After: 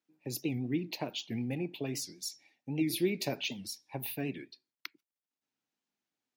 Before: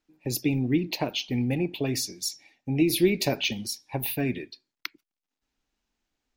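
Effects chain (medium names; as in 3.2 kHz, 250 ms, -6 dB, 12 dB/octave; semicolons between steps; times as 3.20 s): high-pass 110 Hz 24 dB/octave; warped record 78 rpm, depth 160 cents; trim -8.5 dB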